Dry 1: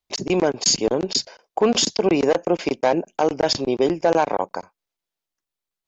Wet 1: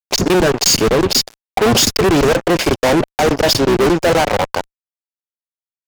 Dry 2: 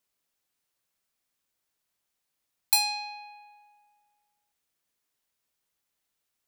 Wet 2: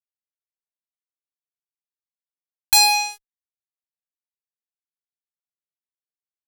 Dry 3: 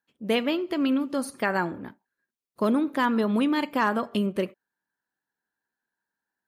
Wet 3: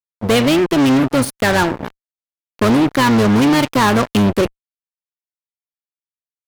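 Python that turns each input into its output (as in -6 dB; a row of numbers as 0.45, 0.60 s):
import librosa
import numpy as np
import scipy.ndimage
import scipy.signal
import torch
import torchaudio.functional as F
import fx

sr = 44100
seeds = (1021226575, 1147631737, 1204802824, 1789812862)

y = fx.octave_divider(x, sr, octaves=1, level_db=-6.0)
y = fx.fuzz(y, sr, gain_db=30.0, gate_db=-36.0)
y = F.gain(torch.from_numpy(y), 3.0).numpy()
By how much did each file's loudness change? +6.5, +10.0, +11.0 LU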